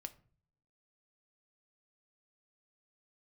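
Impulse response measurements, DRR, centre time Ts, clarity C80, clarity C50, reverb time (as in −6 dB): 8.5 dB, 4 ms, 22.5 dB, 18.0 dB, 0.45 s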